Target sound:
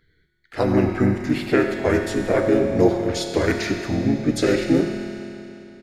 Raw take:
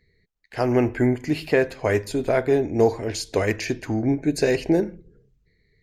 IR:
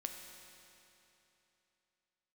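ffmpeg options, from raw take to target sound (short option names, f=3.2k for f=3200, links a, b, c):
-filter_complex "[0:a]asplit=2[a][b];[b]asetrate=35002,aresample=44100,atempo=1.25992,volume=0dB[c];[a][c]amix=inputs=2:normalize=0,asplit=2[d][e];[e]adelay=100,highpass=300,lowpass=3.4k,asoftclip=type=hard:threshold=-12dB,volume=-14dB[f];[d][f]amix=inputs=2:normalize=0[g];[1:a]atrim=start_sample=2205[h];[g][h]afir=irnorm=-1:irlink=0,volume=1dB"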